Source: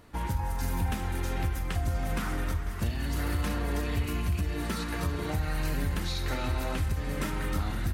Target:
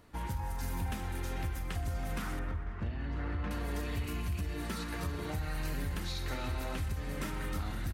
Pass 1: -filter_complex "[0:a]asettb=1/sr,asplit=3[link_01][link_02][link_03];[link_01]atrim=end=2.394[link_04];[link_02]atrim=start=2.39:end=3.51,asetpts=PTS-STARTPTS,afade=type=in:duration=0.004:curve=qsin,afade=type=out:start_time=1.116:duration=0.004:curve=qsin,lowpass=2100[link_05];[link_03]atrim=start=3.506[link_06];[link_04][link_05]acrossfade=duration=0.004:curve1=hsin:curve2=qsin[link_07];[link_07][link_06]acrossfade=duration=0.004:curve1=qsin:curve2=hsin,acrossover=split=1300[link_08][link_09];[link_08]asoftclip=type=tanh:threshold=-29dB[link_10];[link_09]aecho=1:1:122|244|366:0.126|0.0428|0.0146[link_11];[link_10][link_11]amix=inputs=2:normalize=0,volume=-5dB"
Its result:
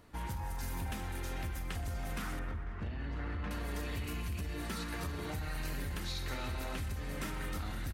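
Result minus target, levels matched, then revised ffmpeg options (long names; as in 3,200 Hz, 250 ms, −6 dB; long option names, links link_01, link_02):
soft clipping: distortion +10 dB
-filter_complex "[0:a]asettb=1/sr,asplit=3[link_01][link_02][link_03];[link_01]atrim=end=2.394[link_04];[link_02]atrim=start=2.39:end=3.51,asetpts=PTS-STARTPTS,afade=type=in:duration=0.004:curve=qsin,afade=type=out:start_time=1.116:duration=0.004:curve=qsin,lowpass=2100[link_05];[link_03]atrim=start=3.506[link_06];[link_04][link_05]acrossfade=duration=0.004:curve1=hsin:curve2=qsin[link_07];[link_07][link_06]acrossfade=duration=0.004:curve1=qsin:curve2=hsin,acrossover=split=1300[link_08][link_09];[link_08]asoftclip=type=tanh:threshold=-21dB[link_10];[link_09]aecho=1:1:122|244|366:0.126|0.0428|0.0146[link_11];[link_10][link_11]amix=inputs=2:normalize=0,volume=-5dB"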